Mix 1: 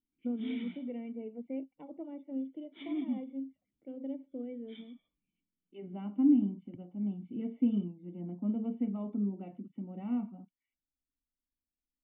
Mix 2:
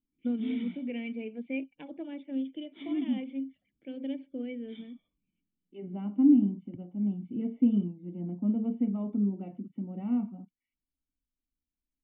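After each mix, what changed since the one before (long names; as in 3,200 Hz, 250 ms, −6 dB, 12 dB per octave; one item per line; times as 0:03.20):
first voice: remove Savitzky-Golay smoothing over 65 samples
master: add low-shelf EQ 400 Hz +6 dB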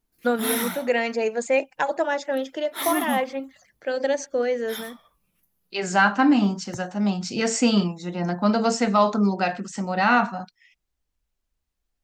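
second voice: remove Savitzky-Golay smoothing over 65 samples
master: remove formant resonators in series i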